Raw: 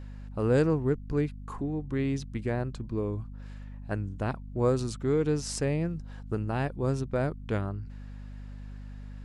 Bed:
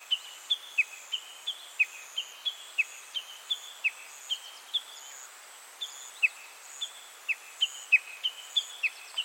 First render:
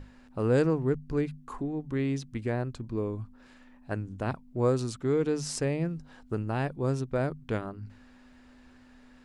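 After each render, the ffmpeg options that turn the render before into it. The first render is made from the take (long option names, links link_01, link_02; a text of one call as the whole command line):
ffmpeg -i in.wav -af "bandreject=frequency=50:width_type=h:width=6,bandreject=frequency=100:width_type=h:width=6,bandreject=frequency=150:width_type=h:width=6,bandreject=frequency=200:width_type=h:width=6" out.wav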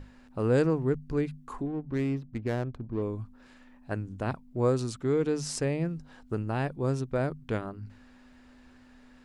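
ffmpeg -i in.wav -filter_complex "[0:a]asettb=1/sr,asplit=3[link_01][link_02][link_03];[link_01]atrim=end=1.664[link_04];[link_02]atrim=start=1.66:end=3.02,asetpts=PTS-STARTPTS,afade=type=in:duration=0.004:curve=qsin,afade=type=out:start_time=1.356:duration=0.004:curve=qsin,adynamicsmooth=sensitivity=8:basefreq=740[link_05];[link_03]atrim=start=3.016[link_06];[link_04][link_05]acrossfade=duration=0.004:curve1=hsin:curve2=qsin[link_07];[link_07][link_06]acrossfade=duration=0.004:curve1=qsin:curve2=hsin" out.wav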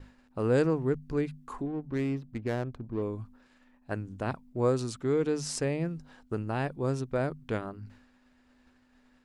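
ffmpeg -i in.wav -af "agate=range=-33dB:threshold=-48dB:ratio=3:detection=peak,lowshelf=frequency=180:gain=-3.5" out.wav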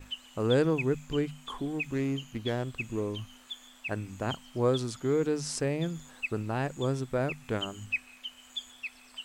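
ffmpeg -i in.wav -i bed.wav -filter_complex "[1:a]volume=-9.5dB[link_01];[0:a][link_01]amix=inputs=2:normalize=0" out.wav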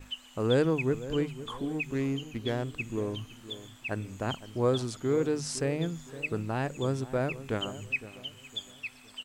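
ffmpeg -i in.wav -filter_complex "[0:a]asplit=2[link_01][link_02];[link_02]adelay=512,lowpass=frequency=1200:poles=1,volume=-14dB,asplit=2[link_03][link_04];[link_04]adelay=512,lowpass=frequency=1200:poles=1,volume=0.41,asplit=2[link_05][link_06];[link_06]adelay=512,lowpass=frequency=1200:poles=1,volume=0.41,asplit=2[link_07][link_08];[link_08]adelay=512,lowpass=frequency=1200:poles=1,volume=0.41[link_09];[link_01][link_03][link_05][link_07][link_09]amix=inputs=5:normalize=0" out.wav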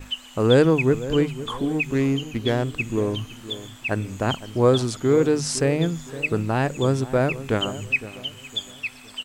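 ffmpeg -i in.wav -af "volume=9dB" out.wav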